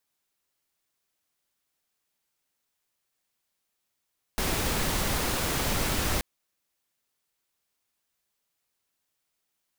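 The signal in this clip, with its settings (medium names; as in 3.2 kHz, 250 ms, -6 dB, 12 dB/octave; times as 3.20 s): noise pink, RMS -27.5 dBFS 1.83 s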